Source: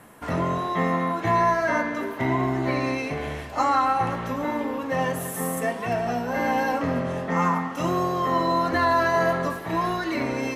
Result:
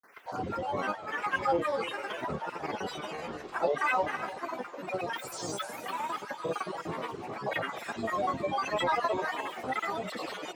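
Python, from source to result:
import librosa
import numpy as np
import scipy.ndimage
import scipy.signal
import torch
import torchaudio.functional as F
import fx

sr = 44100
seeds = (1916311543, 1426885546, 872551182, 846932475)

y = fx.spec_dropout(x, sr, seeds[0], share_pct=34)
y = fx.highpass(y, sr, hz=920.0, slope=6)
y = fx.peak_eq(y, sr, hz=2600.0, db=-9.5, octaves=1.1)
y = fx.echo_wet_highpass(y, sr, ms=97, feedback_pct=63, hz=2200.0, wet_db=-4.0)
y = fx.granulator(y, sr, seeds[1], grain_ms=100.0, per_s=20.0, spray_ms=100.0, spread_st=12)
y = fx.high_shelf(y, sr, hz=8900.0, db=-10.0)
y = fx.echo_feedback(y, sr, ms=298, feedback_pct=41, wet_db=-15.5)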